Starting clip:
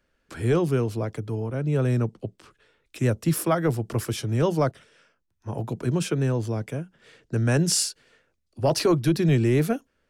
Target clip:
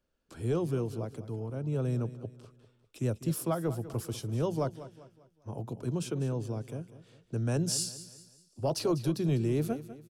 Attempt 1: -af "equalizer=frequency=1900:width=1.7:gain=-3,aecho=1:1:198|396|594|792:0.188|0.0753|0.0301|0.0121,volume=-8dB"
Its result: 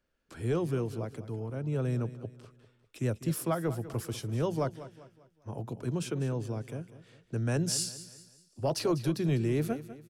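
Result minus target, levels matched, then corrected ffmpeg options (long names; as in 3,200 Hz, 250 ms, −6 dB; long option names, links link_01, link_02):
2,000 Hz band +4.5 dB
-af "equalizer=frequency=1900:width=1.7:gain=-10,aecho=1:1:198|396|594|792:0.188|0.0753|0.0301|0.0121,volume=-8dB"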